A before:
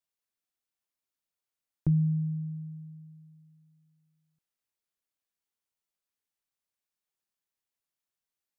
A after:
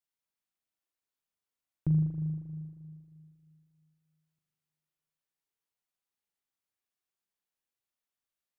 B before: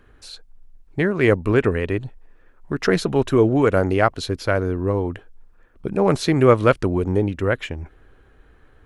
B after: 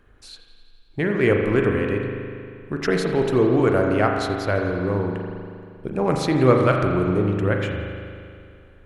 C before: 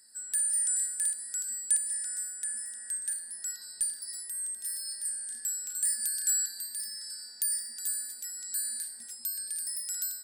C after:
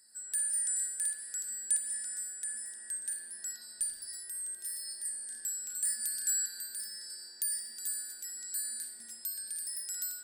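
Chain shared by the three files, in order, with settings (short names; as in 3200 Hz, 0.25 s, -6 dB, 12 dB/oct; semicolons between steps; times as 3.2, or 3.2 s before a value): on a send: thinning echo 85 ms, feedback 71%, high-pass 900 Hz, level -23 dB; on the sum: spring tank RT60 2.3 s, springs 39 ms, chirp 50 ms, DRR 1.5 dB; gain -3.5 dB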